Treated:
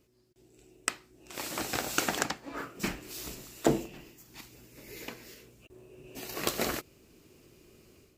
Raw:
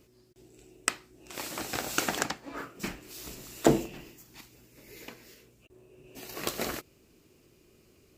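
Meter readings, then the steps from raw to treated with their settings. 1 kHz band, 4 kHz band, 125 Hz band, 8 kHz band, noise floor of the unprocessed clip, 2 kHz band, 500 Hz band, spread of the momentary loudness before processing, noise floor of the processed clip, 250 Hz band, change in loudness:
−0.5 dB, +0.5 dB, −2.0 dB, −0.5 dB, −63 dBFS, 0.0 dB, −2.0 dB, 23 LU, −66 dBFS, −2.0 dB, −1.5 dB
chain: automatic gain control gain up to 10.5 dB
level −7 dB

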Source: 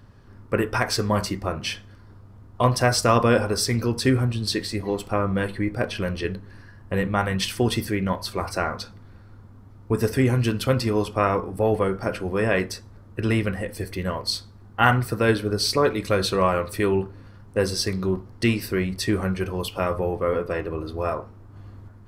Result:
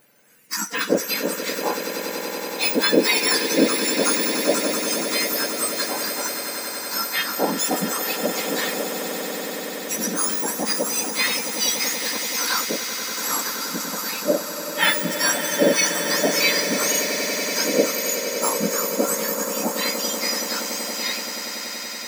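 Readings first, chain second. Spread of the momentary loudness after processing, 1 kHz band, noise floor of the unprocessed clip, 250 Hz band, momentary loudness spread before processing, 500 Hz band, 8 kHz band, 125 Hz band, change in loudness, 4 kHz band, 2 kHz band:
9 LU, −1.0 dB, −47 dBFS, −1.5 dB, 9 LU, 0.0 dB, +13.0 dB, −15.5 dB, +2.5 dB, +7.0 dB, +5.0 dB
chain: frequency axis turned over on the octave scale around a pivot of 1,600 Hz
echo that builds up and dies away 95 ms, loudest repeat 8, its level −13 dB
level +3 dB

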